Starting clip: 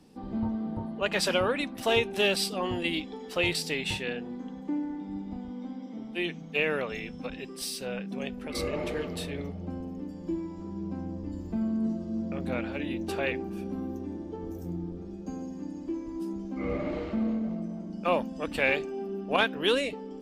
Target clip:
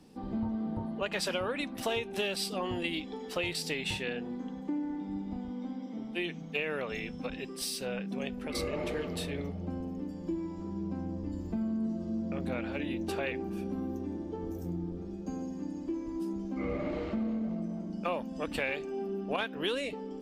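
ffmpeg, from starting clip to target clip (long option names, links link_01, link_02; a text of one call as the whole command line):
ffmpeg -i in.wav -af "acompressor=threshold=-30dB:ratio=4" out.wav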